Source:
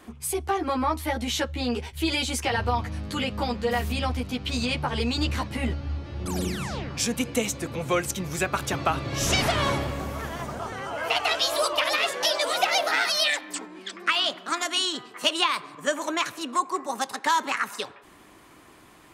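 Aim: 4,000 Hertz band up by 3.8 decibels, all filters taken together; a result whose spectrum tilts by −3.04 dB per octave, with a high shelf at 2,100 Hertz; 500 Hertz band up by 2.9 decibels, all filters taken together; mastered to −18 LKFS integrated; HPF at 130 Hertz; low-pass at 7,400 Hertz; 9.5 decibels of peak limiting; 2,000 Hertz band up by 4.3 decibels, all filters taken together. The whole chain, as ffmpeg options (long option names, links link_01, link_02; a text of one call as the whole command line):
ffmpeg -i in.wav -af "highpass=130,lowpass=7400,equalizer=frequency=500:width_type=o:gain=3.5,equalizer=frequency=2000:width_type=o:gain=5.5,highshelf=frequency=2100:gain=-3.5,equalizer=frequency=4000:width_type=o:gain=6.5,volume=7.5dB,alimiter=limit=-6dB:level=0:latency=1" out.wav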